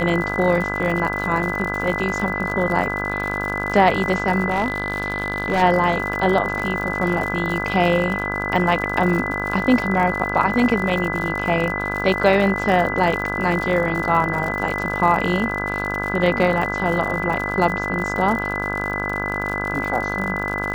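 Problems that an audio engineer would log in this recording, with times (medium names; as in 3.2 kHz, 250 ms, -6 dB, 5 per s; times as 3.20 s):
buzz 50 Hz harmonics 33 -27 dBFS
crackle 85 per s -26 dBFS
whine 2 kHz -25 dBFS
4.50–5.63 s: clipped -14.5 dBFS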